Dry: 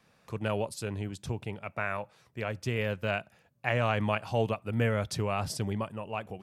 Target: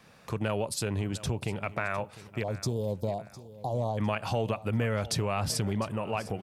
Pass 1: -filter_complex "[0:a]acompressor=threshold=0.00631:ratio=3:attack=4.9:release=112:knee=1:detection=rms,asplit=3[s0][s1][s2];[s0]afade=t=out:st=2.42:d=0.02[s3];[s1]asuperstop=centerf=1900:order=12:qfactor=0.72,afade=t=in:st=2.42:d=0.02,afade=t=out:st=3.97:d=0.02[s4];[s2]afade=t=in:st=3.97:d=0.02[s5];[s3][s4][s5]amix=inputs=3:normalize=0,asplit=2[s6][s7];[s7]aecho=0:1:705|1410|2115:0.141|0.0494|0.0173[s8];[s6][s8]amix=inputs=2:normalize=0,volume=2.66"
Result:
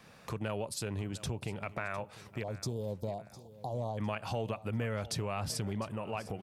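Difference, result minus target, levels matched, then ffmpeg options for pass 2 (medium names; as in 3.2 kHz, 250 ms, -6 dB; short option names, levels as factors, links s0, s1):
compression: peak gain reduction +6 dB
-filter_complex "[0:a]acompressor=threshold=0.0178:ratio=3:attack=4.9:release=112:knee=1:detection=rms,asplit=3[s0][s1][s2];[s0]afade=t=out:st=2.42:d=0.02[s3];[s1]asuperstop=centerf=1900:order=12:qfactor=0.72,afade=t=in:st=2.42:d=0.02,afade=t=out:st=3.97:d=0.02[s4];[s2]afade=t=in:st=3.97:d=0.02[s5];[s3][s4][s5]amix=inputs=3:normalize=0,asplit=2[s6][s7];[s7]aecho=0:1:705|1410|2115:0.141|0.0494|0.0173[s8];[s6][s8]amix=inputs=2:normalize=0,volume=2.66"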